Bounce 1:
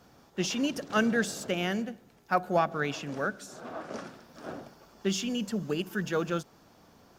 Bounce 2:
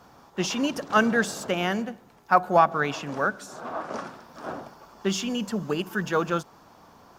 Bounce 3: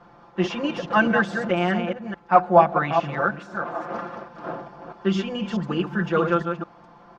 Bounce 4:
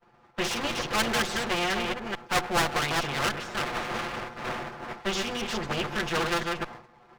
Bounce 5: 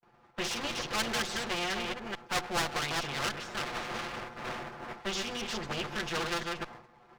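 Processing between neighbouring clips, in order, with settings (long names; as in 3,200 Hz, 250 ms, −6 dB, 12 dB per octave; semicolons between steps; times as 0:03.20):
parametric band 1,000 Hz +9 dB 0.98 octaves; level +2.5 dB
delay that plays each chunk backwards 214 ms, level −6 dB; low-pass filter 2,600 Hz 12 dB per octave; comb filter 5.8 ms, depth 90%
lower of the sound and its delayed copy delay 8.2 ms; downward expander −40 dBFS; every bin compressed towards the loudest bin 2 to 1; level −4.5 dB
noise gate with hold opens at −54 dBFS; dynamic equaliser 5,100 Hz, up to +4 dB, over −41 dBFS, Q 0.72; in parallel at −2 dB: downward compressor, threshold −37 dBFS, peak gain reduction 17 dB; on the sum: level −8 dB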